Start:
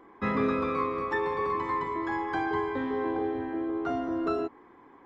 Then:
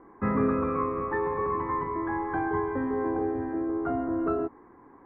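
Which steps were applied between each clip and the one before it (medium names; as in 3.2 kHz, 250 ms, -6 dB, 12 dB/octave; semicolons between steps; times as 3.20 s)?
low-pass 1.8 kHz 24 dB/octave; bass shelf 190 Hz +7.5 dB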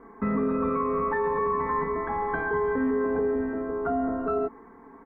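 comb 4.5 ms, depth 96%; peak limiter -20.5 dBFS, peak gain reduction 9.5 dB; trim +2 dB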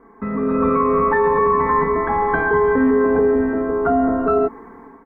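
level rider gain up to 10 dB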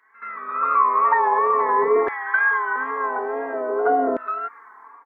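wow and flutter 75 cents; pre-echo 76 ms -15 dB; LFO high-pass saw down 0.48 Hz 400–1900 Hz; trim -4 dB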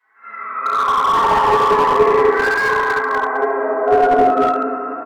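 feedback delay 69 ms, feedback 47%, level -7 dB; reverberation RT60 2.8 s, pre-delay 4 ms, DRR -17 dB; slew-rate limiter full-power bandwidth 1.4 kHz; trim -14.5 dB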